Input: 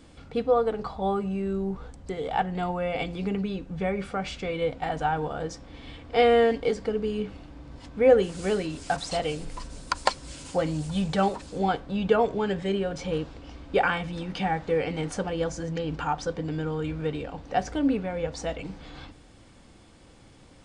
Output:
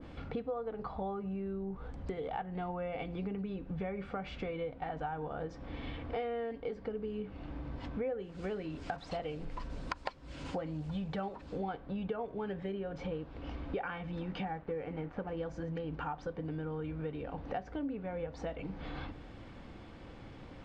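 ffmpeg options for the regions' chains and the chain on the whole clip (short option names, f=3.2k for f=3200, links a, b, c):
-filter_complex "[0:a]asettb=1/sr,asplit=3[a][b][c];[a]atrim=end=14.454[d];[b]atrim=start=14.45:end=15.37,asetpts=PTS-STARTPTS,afade=t=in:d=0.004:c=qsin,afade=t=out:st=0.916:d=0.004:c=qsin,lowpass=2.3k,aeval=exprs='sgn(val(0))*max(abs(val(0))-0.00376,0)':c=same[e];[c]atrim=start=15.366[f];[d][e]acrossfade=d=0.004:c1=hsin:c2=qsin[g];[g][f]acrossfade=d=0.004:c1=qsin:c2=hsin,lowpass=2.8k,acompressor=threshold=-40dB:ratio=6,adynamicequalizer=threshold=0.00158:dfrequency=1800:dqfactor=0.7:tfrequency=1800:tqfactor=0.7:attack=5:release=100:ratio=0.375:range=1.5:mode=cutabove:tftype=highshelf,volume=3.5dB"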